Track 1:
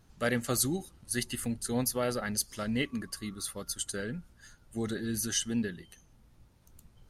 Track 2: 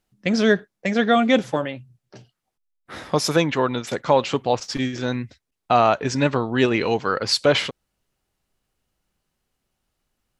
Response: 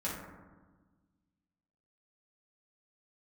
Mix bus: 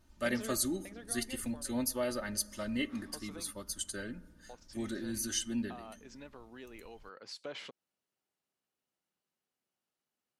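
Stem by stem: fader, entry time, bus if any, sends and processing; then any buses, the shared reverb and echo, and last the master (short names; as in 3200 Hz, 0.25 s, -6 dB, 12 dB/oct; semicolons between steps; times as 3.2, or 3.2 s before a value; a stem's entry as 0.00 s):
-6.0 dB, 0.00 s, send -20.5 dB, comb 3.3 ms, depth 77%
-12.5 dB, 0.00 s, muted 3.51–4.49, no send, HPF 210 Hz 12 dB/oct; compressor 2.5:1, threshold -28 dBFS, peak gain reduction 11 dB; auto duck -10 dB, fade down 1.05 s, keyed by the first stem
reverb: on, RT60 1.3 s, pre-delay 3 ms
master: dry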